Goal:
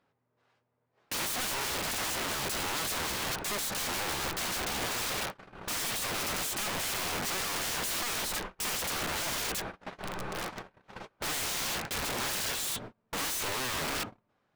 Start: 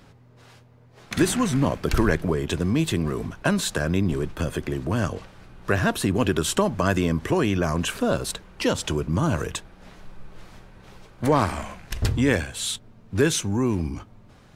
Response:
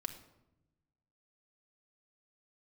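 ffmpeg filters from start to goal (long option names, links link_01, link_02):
-filter_complex "[0:a]agate=range=-35dB:threshold=-42dB:ratio=16:detection=peak,asplit=3[link_01][link_02][link_03];[link_01]afade=type=out:start_time=7.52:duration=0.02[link_04];[link_02]asubboost=boost=3:cutoff=53,afade=type=in:start_time=7.52:duration=0.02,afade=type=out:start_time=9.22:duration=0.02[link_05];[link_03]afade=type=in:start_time=9.22:duration=0.02[link_06];[link_04][link_05][link_06]amix=inputs=3:normalize=0,asoftclip=type=tanh:threshold=-17.5dB,asplit=2[link_07][link_08];[link_08]highpass=frequency=720:poles=1,volume=26dB,asoftclip=type=tanh:threshold=-17.5dB[link_09];[link_07][link_09]amix=inputs=2:normalize=0,lowpass=frequency=1400:poles=1,volume=-6dB,aeval=exprs='(mod(26.6*val(0)+1,2)-1)/26.6':channel_layout=same"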